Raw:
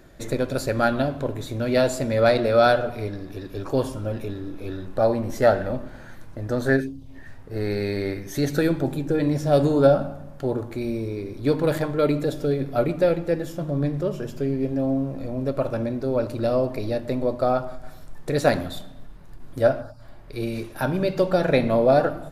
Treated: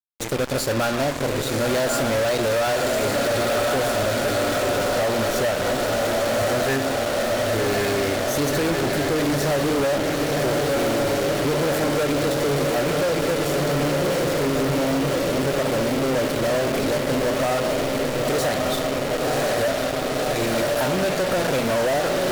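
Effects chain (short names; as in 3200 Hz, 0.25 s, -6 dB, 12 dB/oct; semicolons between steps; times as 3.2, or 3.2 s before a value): in parallel at -11 dB: sample-rate reducer 2500 Hz; on the sum: low shelf 370 Hz -10 dB; on a send: diffused feedback echo 1.059 s, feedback 75%, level -6 dB; on the sum: compressor, threshold -21 dBFS, peak gain reduction 9 dB; fuzz box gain 37 dB, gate -35 dBFS; gain -5.5 dB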